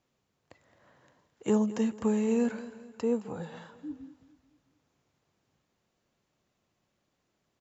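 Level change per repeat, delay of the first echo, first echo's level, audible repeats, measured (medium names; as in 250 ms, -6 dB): -7.0 dB, 217 ms, -16.0 dB, 3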